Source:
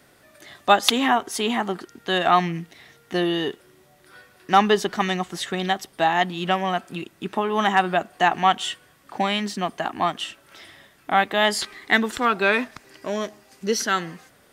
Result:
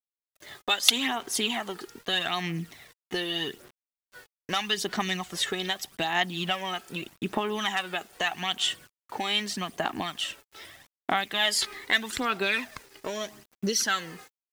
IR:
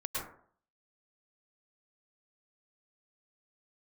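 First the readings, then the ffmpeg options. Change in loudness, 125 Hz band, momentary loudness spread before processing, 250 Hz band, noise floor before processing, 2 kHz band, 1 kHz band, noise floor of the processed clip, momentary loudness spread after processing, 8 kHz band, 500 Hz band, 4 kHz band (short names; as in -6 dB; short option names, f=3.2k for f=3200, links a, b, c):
-5.5 dB, -7.0 dB, 14 LU, -8.5 dB, -56 dBFS, -5.0 dB, -11.5 dB, under -85 dBFS, 15 LU, +1.0 dB, -10.0 dB, 0.0 dB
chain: -filter_complex "[0:a]agate=range=-33dB:threshold=-42dB:ratio=3:detection=peak,acrossover=split=2200[a][b];[a]acompressor=threshold=-30dB:ratio=16[c];[c][b]amix=inputs=2:normalize=0,acrusher=bits=8:mix=0:aa=0.000001,aphaser=in_gain=1:out_gain=1:delay=2.4:decay=0.47:speed=0.81:type=sinusoidal"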